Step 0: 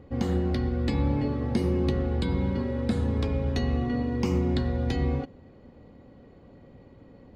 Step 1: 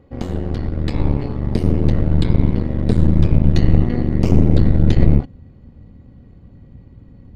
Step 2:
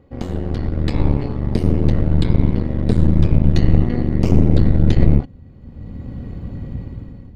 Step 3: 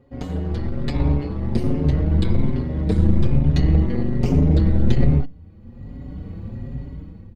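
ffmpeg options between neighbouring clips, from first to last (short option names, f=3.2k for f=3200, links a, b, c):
-af "asubboost=boost=6:cutoff=190,aeval=exprs='0.562*(cos(1*acos(clip(val(0)/0.562,-1,1)))-cos(1*PI/2))+0.282*(cos(4*acos(clip(val(0)/0.562,-1,1)))-cos(4*PI/2))':c=same,volume=-1dB"
-af "dynaudnorm=f=170:g=7:m=15dB,volume=-1dB"
-filter_complex "[0:a]asplit=2[a][b];[b]adelay=5.3,afreqshift=1.2[c];[a][c]amix=inputs=2:normalize=1"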